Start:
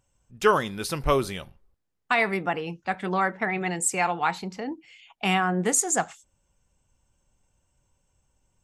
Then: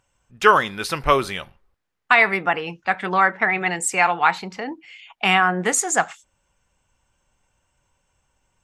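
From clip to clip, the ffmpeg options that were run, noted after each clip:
-af "equalizer=f=1.7k:w=0.4:g=10.5,volume=-1dB"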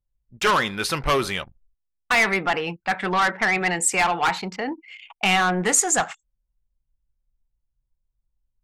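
-filter_complex "[0:a]anlmdn=0.1,acrossover=split=3400[a][b];[a]asoftclip=type=tanh:threshold=-18.5dB[c];[c][b]amix=inputs=2:normalize=0,volume=2.5dB"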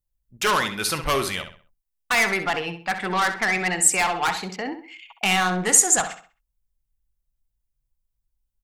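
-filter_complex "[0:a]highshelf=f=6.9k:g=11.5,asplit=2[a][b];[b]adelay=65,lowpass=f=4.9k:p=1,volume=-9dB,asplit=2[c][d];[d]adelay=65,lowpass=f=4.9k:p=1,volume=0.35,asplit=2[e][f];[f]adelay=65,lowpass=f=4.9k:p=1,volume=0.35,asplit=2[g][h];[h]adelay=65,lowpass=f=4.9k:p=1,volume=0.35[i];[c][e][g][i]amix=inputs=4:normalize=0[j];[a][j]amix=inputs=2:normalize=0,volume=-2.5dB"

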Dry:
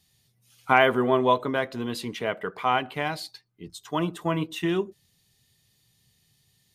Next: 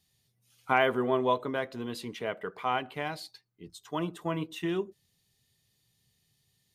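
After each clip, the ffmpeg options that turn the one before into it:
-af "equalizer=f=450:w=1.5:g=2,volume=-6.5dB"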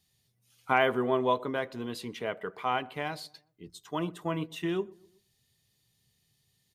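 -filter_complex "[0:a]asplit=2[a][b];[b]adelay=123,lowpass=f=1.1k:p=1,volume=-23dB,asplit=2[c][d];[d]adelay=123,lowpass=f=1.1k:p=1,volume=0.51,asplit=2[e][f];[f]adelay=123,lowpass=f=1.1k:p=1,volume=0.51[g];[a][c][e][g]amix=inputs=4:normalize=0"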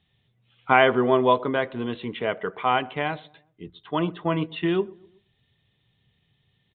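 -af "aresample=8000,aresample=44100,volume=7.5dB"

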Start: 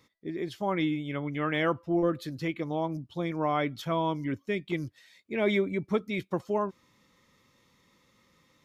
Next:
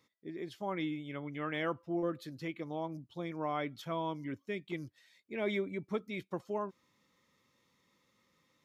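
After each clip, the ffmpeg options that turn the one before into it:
-af "lowshelf=f=70:g=-11,volume=-7.5dB"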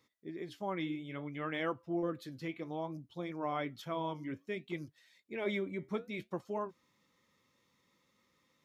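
-af "flanger=delay=2.3:depth=9.4:regen=-74:speed=0.6:shape=triangular,volume=3.5dB"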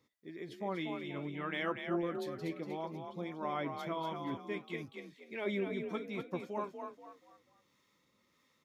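-filter_complex "[0:a]acrossover=split=760[a][b];[a]aeval=exprs='val(0)*(1-0.5/2+0.5/2*cos(2*PI*1.6*n/s))':c=same[c];[b]aeval=exprs='val(0)*(1-0.5/2-0.5/2*cos(2*PI*1.6*n/s))':c=same[d];[c][d]amix=inputs=2:normalize=0,asplit=5[e][f][g][h][i];[f]adelay=240,afreqshift=38,volume=-6dB[j];[g]adelay=480,afreqshift=76,volume=-15.1dB[k];[h]adelay=720,afreqshift=114,volume=-24.2dB[l];[i]adelay=960,afreqshift=152,volume=-33.4dB[m];[e][j][k][l][m]amix=inputs=5:normalize=0,volume=1.5dB"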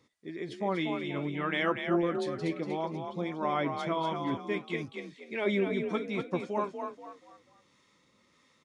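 -af "aresample=22050,aresample=44100,volume=7dB"

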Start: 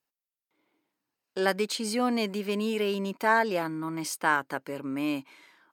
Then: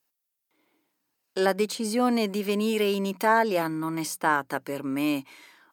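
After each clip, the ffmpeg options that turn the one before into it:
-filter_complex "[0:a]highshelf=f=6.3k:g=8,bandreject=f=60:t=h:w=6,bandreject=f=120:t=h:w=6,bandreject=f=180:t=h:w=6,acrossover=split=1300[a][b];[b]alimiter=level_in=2.5dB:limit=-24dB:level=0:latency=1:release=322,volume=-2.5dB[c];[a][c]amix=inputs=2:normalize=0,volume=3.5dB"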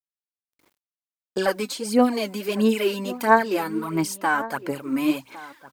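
-filter_complex "[0:a]aphaser=in_gain=1:out_gain=1:delay=4:decay=0.66:speed=1.5:type=sinusoidal,acrusher=bits=9:mix=0:aa=0.000001,asplit=2[a][b];[b]adelay=1108,volume=-16dB,highshelf=f=4k:g=-24.9[c];[a][c]amix=inputs=2:normalize=0,volume=-1dB"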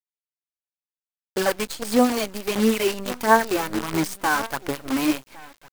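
-af "acrusher=bits=5:dc=4:mix=0:aa=0.000001"

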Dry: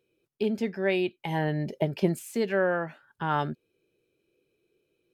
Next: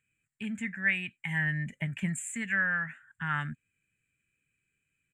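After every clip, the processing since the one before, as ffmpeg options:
-af "firequalizer=gain_entry='entry(110,0);entry(260,-8);entry(360,-28);entry(1800,10);entry(5100,-29);entry(7300,12);entry(12000,-13)':delay=0.05:min_phase=1"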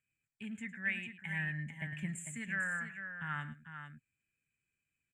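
-af "aecho=1:1:107|448:0.178|0.376,volume=-8dB"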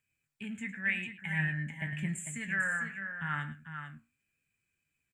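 -filter_complex "[0:a]asplit=2[a][b];[b]adelay=20,volume=-13dB[c];[a][c]amix=inputs=2:normalize=0,flanger=delay=8.8:depth=9:regen=69:speed=0.87:shape=triangular,volume=8.5dB"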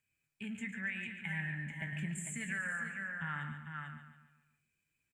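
-filter_complex "[0:a]acompressor=threshold=-34dB:ratio=6,asplit=2[a][b];[b]aecho=0:1:142|284|426|568|710:0.335|0.147|0.0648|0.0285|0.0126[c];[a][c]amix=inputs=2:normalize=0,volume=-1.5dB"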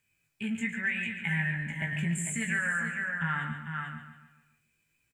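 -filter_complex "[0:a]asplit=2[a][b];[b]adelay=18,volume=-5dB[c];[a][c]amix=inputs=2:normalize=0,volume=7dB"

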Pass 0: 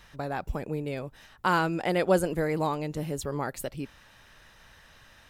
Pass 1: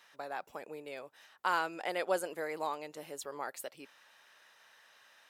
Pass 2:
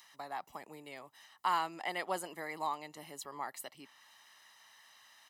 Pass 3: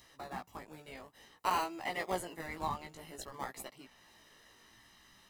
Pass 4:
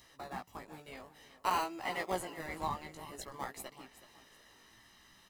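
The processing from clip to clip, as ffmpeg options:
-af "highpass=540,volume=-5.5dB"
-filter_complex "[0:a]aecho=1:1:1:0.62,acrossover=split=100|920|3900[a][b][c][d];[d]acompressor=mode=upward:threshold=-57dB:ratio=2.5[e];[a][b][c][e]amix=inputs=4:normalize=0,volume=-2dB"
-filter_complex "[0:a]asplit=2[a][b];[b]acrusher=samples=35:mix=1:aa=0.000001:lfo=1:lforange=21:lforate=0.45,volume=-6dB[c];[a][c]amix=inputs=2:normalize=0,flanger=delay=15:depth=4:speed=0.56,volume=1.5dB"
-af "aecho=1:1:374|748|1122:0.178|0.0587|0.0194"

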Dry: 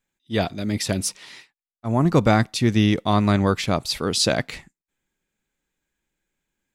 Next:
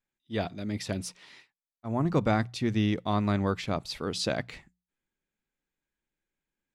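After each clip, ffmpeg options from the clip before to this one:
-af "highshelf=f=6.5k:g=-10.5,bandreject=f=60:t=h:w=6,bandreject=f=120:t=h:w=6,bandreject=f=180:t=h:w=6,volume=-8dB"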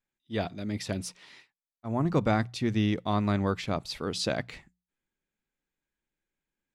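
-af anull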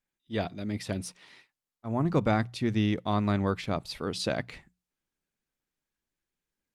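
-ar 48000 -c:a libopus -b:a 48k

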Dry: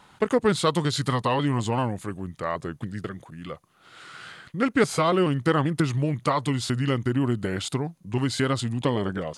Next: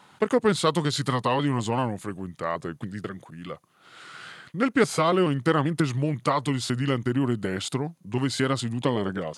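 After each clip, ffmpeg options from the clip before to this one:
-af "highpass=110"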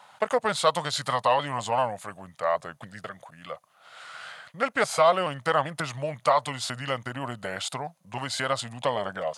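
-af "lowshelf=f=470:t=q:w=3:g=-9.5"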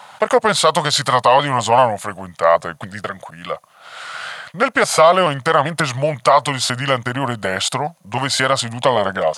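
-af "alimiter=level_in=13.5dB:limit=-1dB:release=50:level=0:latency=1,volume=-1dB"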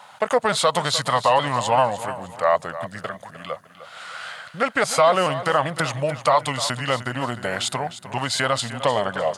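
-af "aecho=1:1:304|608|912:0.211|0.074|0.0259,volume=-5.5dB"

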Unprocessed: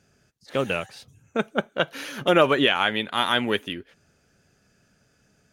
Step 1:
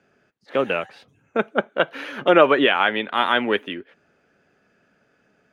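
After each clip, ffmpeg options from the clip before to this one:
-filter_complex "[0:a]acrossover=split=210 3100:gain=0.158 1 0.112[a][b][c];[a][b][c]amix=inputs=3:normalize=0,volume=4.5dB"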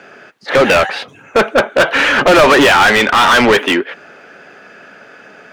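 -filter_complex "[0:a]asplit=2[a][b];[b]highpass=f=720:p=1,volume=34dB,asoftclip=type=tanh:threshold=-1dB[c];[a][c]amix=inputs=2:normalize=0,lowpass=f=3.3k:p=1,volume=-6dB"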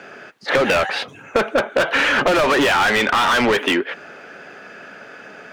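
-af "acompressor=threshold=-15dB:ratio=6"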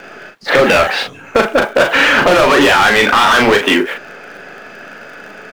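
-filter_complex "[0:a]asplit=2[a][b];[b]acrusher=bits=6:dc=4:mix=0:aa=0.000001,volume=-10dB[c];[a][c]amix=inputs=2:normalize=0,asplit=2[d][e];[e]adelay=39,volume=-5dB[f];[d][f]amix=inputs=2:normalize=0,volume=3dB"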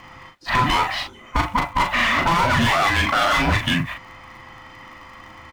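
-af "afftfilt=real='real(if(between(b,1,1008),(2*floor((b-1)/24)+1)*24-b,b),0)':imag='imag(if(between(b,1,1008),(2*floor((b-1)/24)+1)*24-b,b),0)*if(between(b,1,1008),-1,1)':win_size=2048:overlap=0.75,volume=-8.5dB"

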